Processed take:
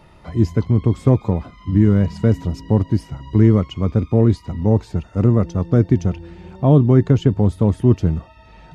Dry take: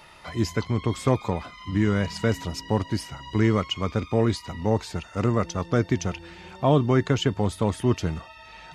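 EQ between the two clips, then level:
tilt shelving filter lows +9.5 dB, about 650 Hz
+1.5 dB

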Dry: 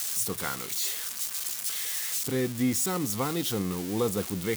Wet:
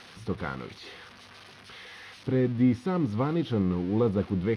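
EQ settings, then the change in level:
moving average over 6 samples
high-frequency loss of the air 74 metres
spectral tilt −2 dB per octave
0.0 dB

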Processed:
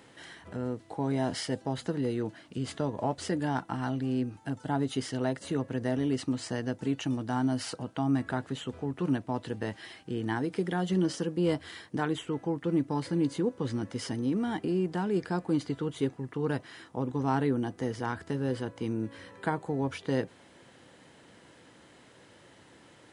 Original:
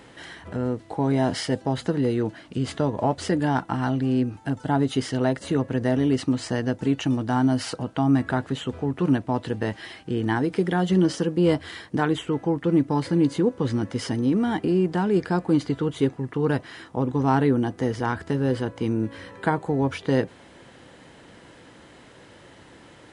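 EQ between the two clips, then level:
high-pass filter 75 Hz
high-shelf EQ 5,400 Hz +5 dB
−7.5 dB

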